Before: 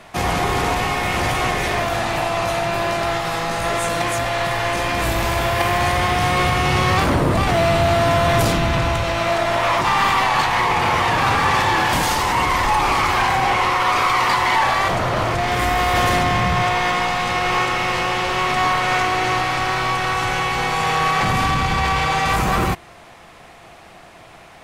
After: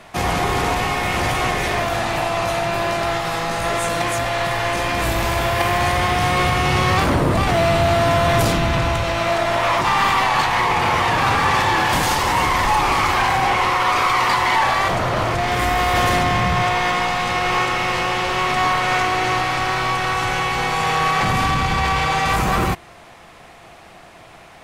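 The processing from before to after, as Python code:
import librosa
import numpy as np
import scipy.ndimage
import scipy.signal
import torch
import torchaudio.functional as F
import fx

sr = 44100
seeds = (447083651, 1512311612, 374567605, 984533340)

y = fx.echo_throw(x, sr, start_s=11.56, length_s=0.6, ms=330, feedback_pct=70, wet_db=-10.0)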